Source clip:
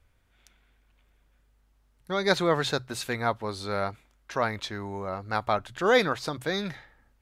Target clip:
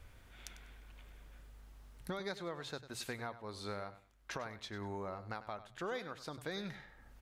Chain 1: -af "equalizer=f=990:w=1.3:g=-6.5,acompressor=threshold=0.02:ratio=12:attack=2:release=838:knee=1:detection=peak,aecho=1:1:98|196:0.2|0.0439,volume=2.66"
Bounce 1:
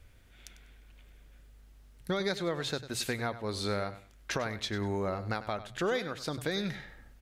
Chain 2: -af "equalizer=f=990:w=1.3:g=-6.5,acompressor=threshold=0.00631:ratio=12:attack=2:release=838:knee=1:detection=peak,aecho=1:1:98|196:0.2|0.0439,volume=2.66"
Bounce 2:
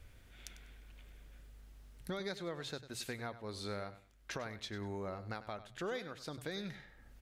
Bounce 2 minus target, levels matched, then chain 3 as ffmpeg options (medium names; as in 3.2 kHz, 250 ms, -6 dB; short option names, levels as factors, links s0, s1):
1 kHz band -2.5 dB
-af "acompressor=threshold=0.00631:ratio=12:attack=2:release=838:knee=1:detection=peak,aecho=1:1:98|196:0.2|0.0439,volume=2.66"